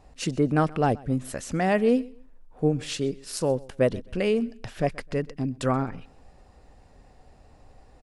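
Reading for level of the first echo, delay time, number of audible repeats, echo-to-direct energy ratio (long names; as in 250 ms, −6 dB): −23.0 dB, 129 ms, 2, −22.5 dB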